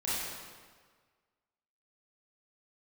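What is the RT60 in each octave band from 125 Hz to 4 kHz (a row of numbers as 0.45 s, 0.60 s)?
1.6 s, 1.5 s, 1.6 s, 1.6 s, 1.4 s, 1.3 s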